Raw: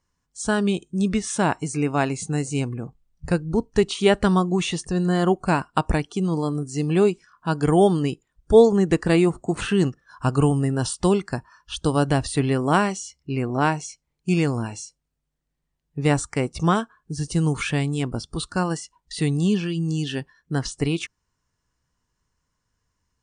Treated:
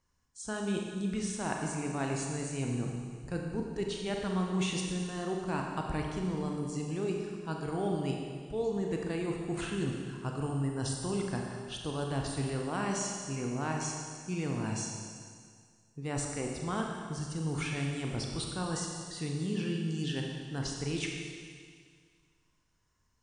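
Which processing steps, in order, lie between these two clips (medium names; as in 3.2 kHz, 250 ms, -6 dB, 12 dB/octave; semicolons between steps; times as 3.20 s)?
reverse; compression 6:1, threshold -30 dBFS, peak gain reduction 20.5 dB; reverse; Schroeder reverb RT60 2 s, combs from 29 ms, DRR 0.5 dB; trim -3 dB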